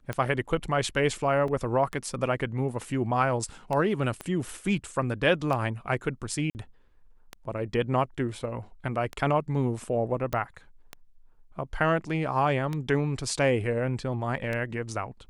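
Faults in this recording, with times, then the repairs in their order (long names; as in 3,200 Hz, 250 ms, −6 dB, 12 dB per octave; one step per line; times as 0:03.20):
scratch tick 33 1/3 rpm −18 dBFS
0:01.48: drop-out 2.3 ms
0:04.21: click −20 dBFS
0:06.50–0:06.55: drop-out 49 ms
0:10.33: click −16 dBFS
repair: click removal
repair the gap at 0:01.48, 2.3 ms
repair the gap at 0:06.50, 49 ms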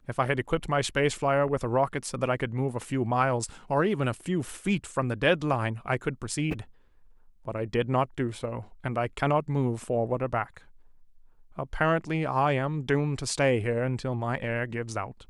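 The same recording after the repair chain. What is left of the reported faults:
0:04.21: click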